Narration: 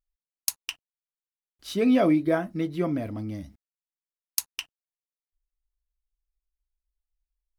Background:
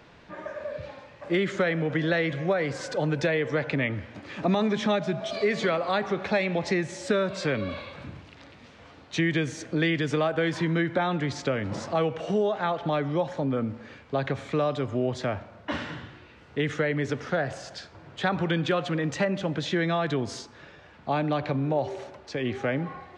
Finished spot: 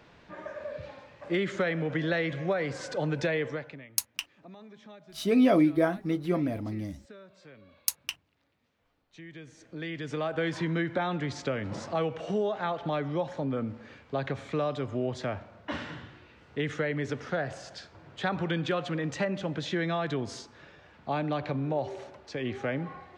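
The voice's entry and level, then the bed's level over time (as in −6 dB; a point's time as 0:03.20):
3.50 s, −1.0 dB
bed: 0:03.45 −3.5 dB
0:03.90 −25 dB
0:09.06 −25 dB
0:10.39 −4 dB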